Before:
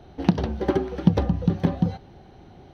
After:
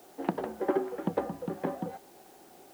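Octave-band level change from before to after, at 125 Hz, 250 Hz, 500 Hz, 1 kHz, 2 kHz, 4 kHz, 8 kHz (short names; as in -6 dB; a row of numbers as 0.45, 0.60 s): -19.5 dB, -11.5 dB, -4.0 dB, -3.0 dB, -5.5 dB, -14.0 dB, n/a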